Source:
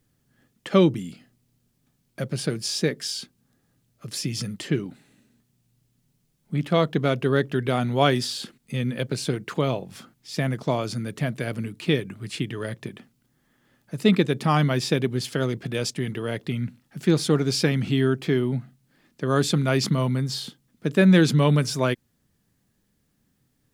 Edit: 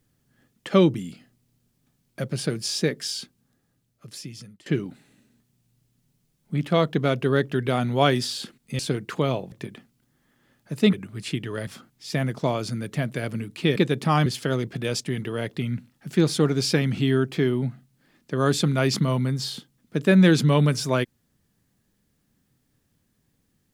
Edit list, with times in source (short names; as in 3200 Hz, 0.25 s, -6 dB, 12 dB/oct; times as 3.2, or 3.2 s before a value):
3.2–4.66 fade out, to -22 dB
8.79–9.18 cut
9.91–12 swap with 12.74–14.15
14.65–15.16 cut